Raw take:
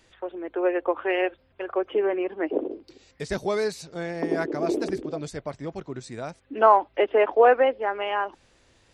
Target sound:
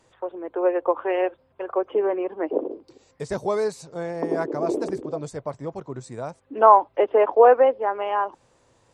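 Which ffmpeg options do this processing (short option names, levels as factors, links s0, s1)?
-af "equalizer=f=125:t=o:w=1:g=11,equalizer=f=250:t=o:w=1:g=4,equalizer=f=500:t=o:w=1:g=9,equalizer=f=1000:t=o:w=1:g=12,equalizer=f=8000:t=o:w=1:g=10,volume=0.355"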